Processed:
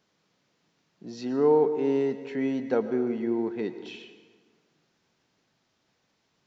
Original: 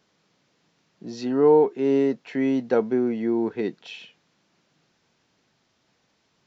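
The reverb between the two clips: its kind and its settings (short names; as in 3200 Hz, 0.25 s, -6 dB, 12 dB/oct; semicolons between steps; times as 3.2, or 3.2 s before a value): plate-style reverb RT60 1.6 s, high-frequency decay 0.65×, pre-delay 95 ms, DRR 11 dB; gain -4.5 dB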